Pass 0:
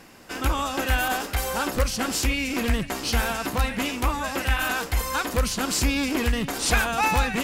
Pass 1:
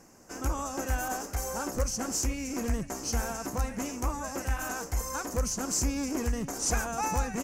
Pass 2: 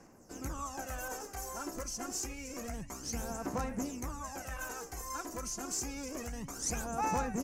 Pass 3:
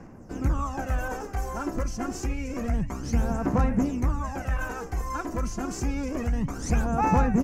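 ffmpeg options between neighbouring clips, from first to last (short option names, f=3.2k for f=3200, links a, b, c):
-af "firequalizer=gain_entry='entry(600,0);entry(3600,-17);entry(6100,8);entry(9100,-2)':delay=0.05:min_phase=1,volume=-6dB"
-filter_complex "[0:a]acrossover=split=150[a][b];[a]asoftclip=type=tanh:threshold=-37dB[c];[c][b]amix=inputs=2:normalize=0,aphaser=in_gain=1:out_gain=1:delay=3:decay=0.57:speed=0.28:type=sinusoidal,volume=-8dB"
-af "bass=f=250:g=9,treble=f=4k:g=-14,volume=8.5dB"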